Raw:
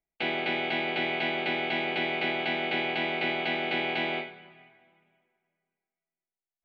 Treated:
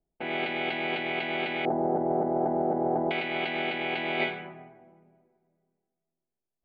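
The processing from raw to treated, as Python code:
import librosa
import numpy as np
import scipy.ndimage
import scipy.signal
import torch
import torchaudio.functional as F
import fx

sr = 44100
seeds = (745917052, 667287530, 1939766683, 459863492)

y = fx.cheby2_lowpass(x, sr, hz=2300.0, order=4, stop_db=50, at=(1.65, 3.11))
y = fx.over_compress(y, sr, threshold_db=-36.0, ratio=-1.0)
y = fx.env_lowpass(y, sr, base_hz=540.0, full_db=-28.5)
y = y * librosa.db_to_amplitude(7.0)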